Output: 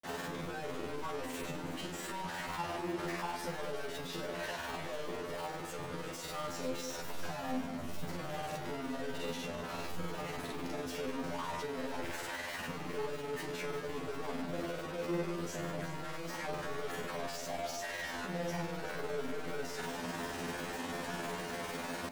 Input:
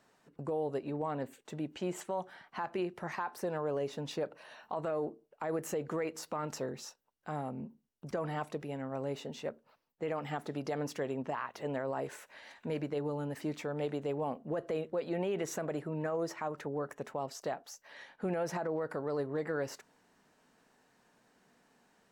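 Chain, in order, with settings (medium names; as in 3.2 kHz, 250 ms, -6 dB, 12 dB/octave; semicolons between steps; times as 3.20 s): one-bit comparator; upward compressor, threshold -51 dBFS; peak limiter -41.5 dBFS, peak gain reduction 9 dB; treble shelf 3.9 kHz -7.5 dB; feedback comb 86 Hz, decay 0.41 s, harmonics all, mix 100%; granulator 100 ms, grains 20 per s, spray 36 ms, pitch spread up and down by 0 st; echo whose repeats swap between lows and highs 187 ms, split 880 Hz, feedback 53%, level -7 dB; trim +14 dB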